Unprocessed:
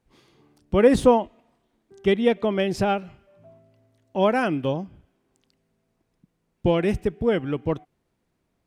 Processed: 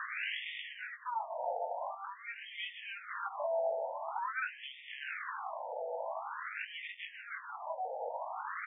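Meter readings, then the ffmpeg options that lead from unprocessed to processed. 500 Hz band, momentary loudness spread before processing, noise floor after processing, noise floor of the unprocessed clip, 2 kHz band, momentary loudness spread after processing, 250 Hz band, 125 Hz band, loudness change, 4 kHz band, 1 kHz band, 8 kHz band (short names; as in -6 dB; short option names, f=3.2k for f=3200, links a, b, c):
-17.0 dB, 12 LU, -52 dBFS, -74 dBFS, -4.5 dB, 8 LU, under -40 dB, under -40 dB, -17.0 dB, -7.5 dB, -8.0 dB, n/a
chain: -filter_complex "[0:a]aeval=exprs='val(0)+0.5*0.0447*sgn(val(0))':c=same,acrossover=split=120[a][b];[b]acompressor=threshold=-29dB:ratio=5[c];[a][c]amix=inputs=2:normalize=0,flanger=delay=18.5:depth=2.9:speed=0.33,aresample=16000,asoftclip=type=tanh:threshold=-26dB,aresample=44100,afftfilt=real='re*between(b*sr/1024,640*pow(2600/640,0.5+0.5*sin(2*PI*0.47*pts/sr))/1.41,640*pow(2600/640,0.5+0.5*sin(2*PI*0.47*pts/sr))*1.41)':imag='im*between(b*sr/1024,640*pow(2600/640,0.5+0.5*sin(2*PI*0.47*pts/sr))/1.41,640*pow(2600/640,0.5+0.5*sin(2*PI*0.47*pts/sr))*1.41)':win_size=1024:overlap=0.75,volume=7.5dB"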